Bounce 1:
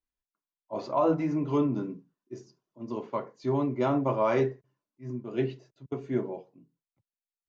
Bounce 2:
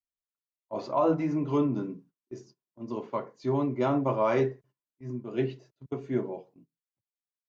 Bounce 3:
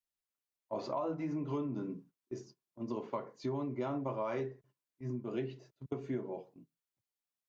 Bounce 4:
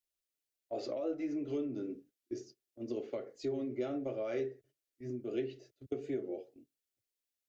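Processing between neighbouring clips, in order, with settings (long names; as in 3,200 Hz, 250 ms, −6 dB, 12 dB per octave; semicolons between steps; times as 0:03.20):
noise gate −55 dBFS, range −16 dB
downward compressor 6 to 1, threshold −34 dBFS, peak gain reduction 13 dB
phaser with its sweep stopped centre 410 Hz, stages 4; wow of a warped record 45 rpm, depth 100 cents; level +2.5 dB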